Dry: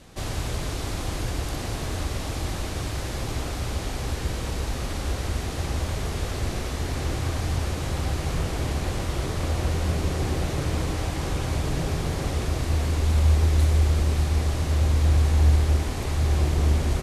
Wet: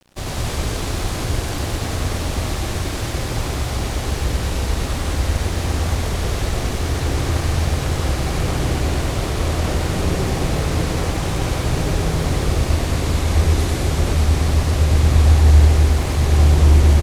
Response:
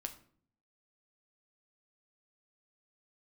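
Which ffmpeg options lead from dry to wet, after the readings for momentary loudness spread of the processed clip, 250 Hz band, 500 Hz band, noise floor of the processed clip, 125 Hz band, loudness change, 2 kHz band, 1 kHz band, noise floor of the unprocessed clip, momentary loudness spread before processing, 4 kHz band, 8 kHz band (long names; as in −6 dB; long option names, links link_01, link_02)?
10 LU, +7.0 dB, +7.0 dB, −25 dBFS, +6.5 dB, +6.5 dB, +7.0 dB, +7.0 dB, −31 dBFS, 9 LU, +7.0 dB, +7.0 dB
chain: -filter_complex "[0:a]aeval=exprs='sgn(val(0))*max(abs(val(0))-0.00562,0)':channel_layout=same,asplit=2[link_01][link_02];[link_02]aecho=0:1:96.21|215.7:0.794|0.708[link_03];[link_01][link_03]amix=inputs=2:normalize=0,volume=4.5dB"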